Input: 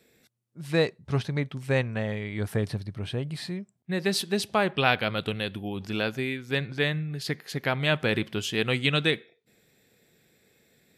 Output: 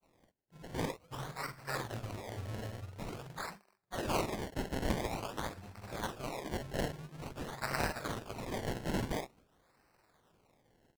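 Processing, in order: block-companded coder 5-bit; amplifier tone stack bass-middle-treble 10-0-10; de-hum 123.5 Hz, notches 20; in parallel at -1.5 dB: compression, threshold -35 dBFS, peak gain reduction 11.5 dB; on the sum: chorus 2.9 Hz, delay 17.5 ms, depth 6.6 ms; granulator; doubling 45 ms -6 dB; decimation with a swept rate 25×, swing 100% 0.48 Hz; loudspeaker Doppler distortion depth 0.26 ms; trim -1.5 dB

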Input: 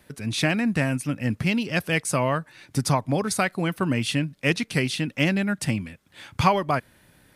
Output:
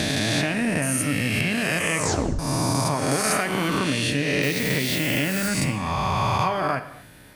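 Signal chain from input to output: reverse spectral sustain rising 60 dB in 1.95 s; 0.82–1.41 s: treble shelf 5.1 kHz +12 dB; 4.42–5.47 s: added noise blue -31 dBFS; compression 4:1, threshold -27 dBFS, peak gain reduction 14 dB; 1.99 s: tape stop 0.40 s; 3.11–3.68 s: treble shelf 11 kHz +9.5 dB; gated-style reverb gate 310 ms falling, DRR 9 dB; trim +5 dB

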